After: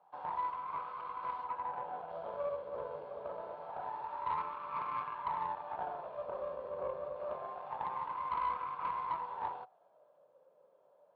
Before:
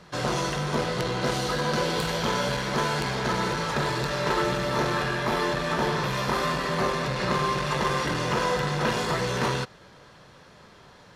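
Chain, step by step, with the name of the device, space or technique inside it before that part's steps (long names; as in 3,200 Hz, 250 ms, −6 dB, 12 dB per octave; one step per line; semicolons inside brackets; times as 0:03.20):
0:01.44–0:02.10: low-pass filter 2,700 Hz 12 dB per octave
wah-wah guitar rig (LFO wah 0.26 Hz 540–1,100 Hz, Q 8; tube saturation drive 30 dB, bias 0.7; loudspeaker in its box 92–3,800 Hz, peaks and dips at 110 Hz −9 dB, 230 Hz −7 dB, 360 Hz −4 dB, 960 Hz +4 dB, 1,900 Hz −9 dB)
level +1 dB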